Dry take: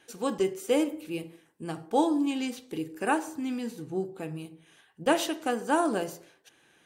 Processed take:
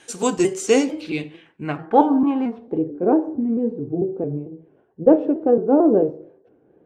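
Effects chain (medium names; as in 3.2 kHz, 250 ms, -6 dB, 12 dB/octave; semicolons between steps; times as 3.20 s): pitch shift switched off and on -1.5 st, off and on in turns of 223 ms; low-pass sweep 8.2 kHz -> 460 Hz, 0.49–3.09 s; trim +9 dB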